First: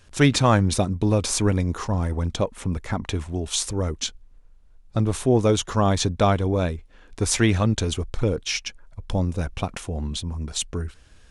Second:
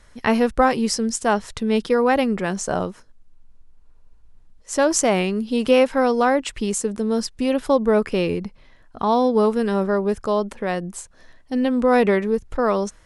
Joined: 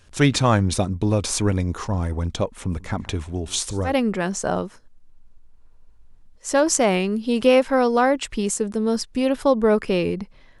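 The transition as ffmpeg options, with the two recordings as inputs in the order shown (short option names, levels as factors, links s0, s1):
-filter_complex "[0:a]asplit=3[s0][s1][s2];[s0]afade=t=out:st=2.68:d=0.02[s3];[s1]aecho=1:1:143:0.0841,afade=t=in:st=2.68:d=0.02,afade=t=out:st=3.95:d=0.02[s4];[s2]afade=t=in:st=3.95:d=0.02[s5];[s3][s4][s5]amix=inputs=3:normalize=0,apad=whole_dur=10.6,atrim=end=10.6,atrim=end=3.95,asetpts=PTS-STARTPTS[s6];[1:a]atrim=start=2.07:end=8.84,asetpts=PTS-STARTPTS[s7];[s6][s7]acrossfade=d=0.12:c1=tri:c2=tri"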